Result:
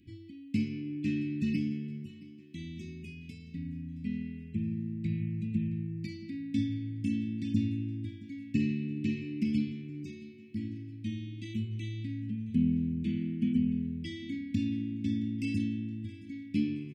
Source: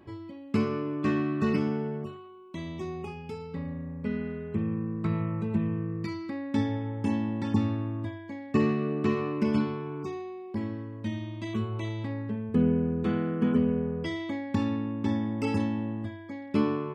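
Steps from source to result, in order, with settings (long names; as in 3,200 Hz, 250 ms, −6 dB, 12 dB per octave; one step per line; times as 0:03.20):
elliptic band-stop filter 290–2,300 Hz, stop band 40 dB
repeating echo 671 ms, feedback 53%, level −19.5 dB
level −2.5 dB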